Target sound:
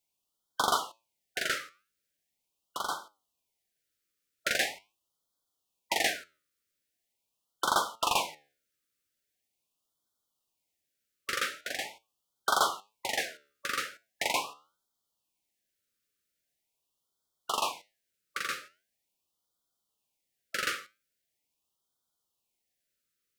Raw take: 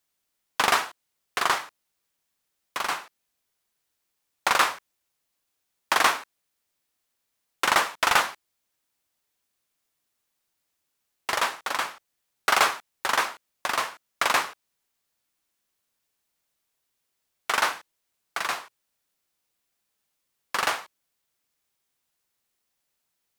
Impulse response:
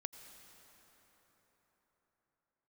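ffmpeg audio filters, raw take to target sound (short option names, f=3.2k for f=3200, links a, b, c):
-af "flanger=delay=8.8:depth=5.2:regen=81:speed=1:shape=sinusoidal,afftfilt=real='re*(1-between(b*sr/1024,810*pow(2200/810,0.5+0.5*sin(2*PI*0.42*pts/sr))/1.41,810*pow(2200/810,0.5+0.5*sin(2*PI*0.42*pts/sr))*1.41))':imag='im*(1-between(b*sr/1024,810*pow(2200/810,0.5+0.5*sin(2*PI*0.42*pts/sr))/1.41,810*pow(2200/810,0.5+0.5*sin(2*PI*0.42*pts/sr))*1.41))':win_size=1024:overlap=0.75"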